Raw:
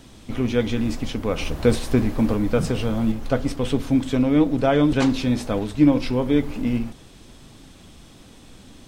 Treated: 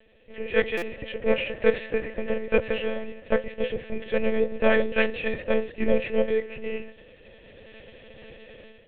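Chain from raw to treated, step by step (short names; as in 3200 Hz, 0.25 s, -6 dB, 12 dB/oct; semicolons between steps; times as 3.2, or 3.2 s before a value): dynamic EQ 1800 Hz, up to +7 dB, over -40 dBFS, Q 0.73; AGC gain up to 13 dB; vowel filter e; air absorption 76 m; monotone LPC vocoder at 8 kHz 220 Hz; stuck buffer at 0.77, samples 256, times 8; gain +4 dB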